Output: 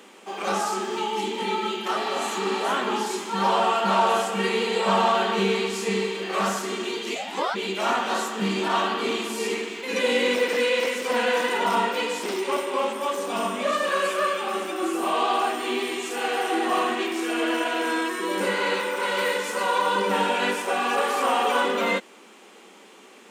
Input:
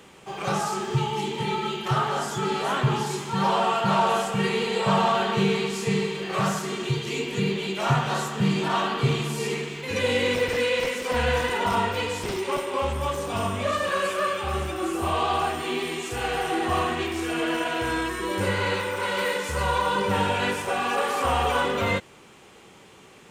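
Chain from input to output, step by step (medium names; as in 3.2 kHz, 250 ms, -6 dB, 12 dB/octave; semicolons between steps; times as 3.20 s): 7.14–7.54 s: ring modulator 250 Hz -> 1.2 kHz; brick-wall FIR high-pass 190 Hz; 1.99–2.58 s: spectral replace 790–5700 Hz after; trim +1.5 dB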